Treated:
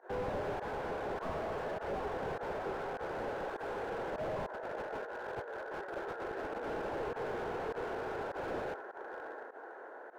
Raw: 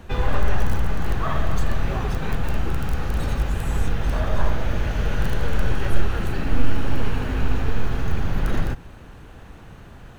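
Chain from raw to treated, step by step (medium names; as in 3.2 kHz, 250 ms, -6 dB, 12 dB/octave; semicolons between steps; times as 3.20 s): steep high-pass 390 Hz 36 dB/octave; peaking EQ 2.8 kHz +4 dB 2.6 oct; band-stop 1.2 kHz, Q 6; echo that smears into a reverb 718 ms, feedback 47%, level -11 dB; volume shaper 101 bpm, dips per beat 1, -20 dB, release 86 ms; FFT filter 650 Hz 0 dB, 1.6 kHz -3 dB, 2.6 kHz -28 dB; 4.46–6.67 s: compressor with a negative ratio -38 dBFS, ratio -0.5; slew-rate limiter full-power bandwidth 11 Hz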